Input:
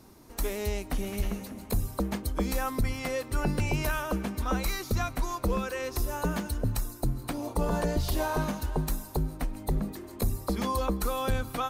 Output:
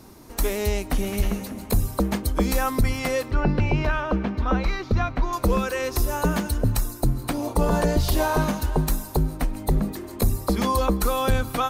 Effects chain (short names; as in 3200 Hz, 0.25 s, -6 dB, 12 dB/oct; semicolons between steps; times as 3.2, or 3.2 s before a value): 3.31–5.33 air absorption 240 m; gain +7 dB